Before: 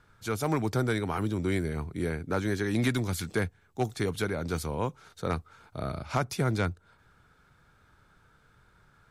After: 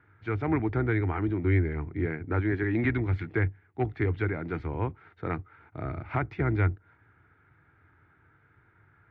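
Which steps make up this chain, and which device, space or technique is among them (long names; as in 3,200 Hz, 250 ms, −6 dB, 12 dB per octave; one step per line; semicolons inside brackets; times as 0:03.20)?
sub-octave bass pedal (sub-octave generator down 1 octave, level −5 dB; loudspeaker in its box 87–2,300 Hz, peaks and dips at 97 Hz +9 dB, 200 Hz −9 dB, 320 Hz +6 dB, 550 Hz −8 dB, 1,100 Hz −4 dB, 2,000 Hz +7 dB)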